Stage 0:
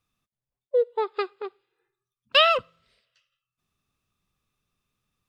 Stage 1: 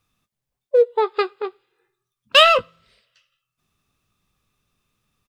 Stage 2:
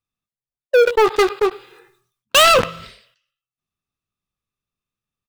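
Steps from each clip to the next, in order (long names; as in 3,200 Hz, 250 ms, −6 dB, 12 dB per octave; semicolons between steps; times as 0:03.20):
in parallel at −6 dB: gain into a clipping stage and back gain 18 dB; on the sum: double-tracking delay 19 ms −12 dB; level +3.5 dB
leveller curve on the samples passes 5; level that may fall only so fast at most 95 dB per second; level −7 dB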